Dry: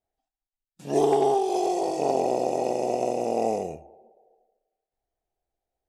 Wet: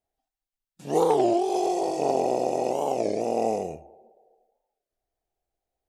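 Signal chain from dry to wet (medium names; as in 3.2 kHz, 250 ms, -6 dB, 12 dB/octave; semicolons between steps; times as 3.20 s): warped record 33 1/3 rpm, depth 250 cents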